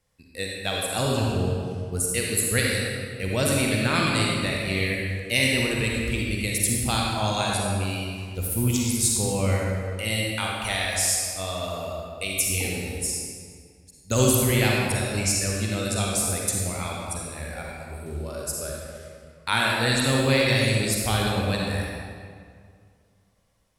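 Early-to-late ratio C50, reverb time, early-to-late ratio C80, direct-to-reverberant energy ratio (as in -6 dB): -2.0 dB, 2.1 s, 0.0 dB, -2.5 dB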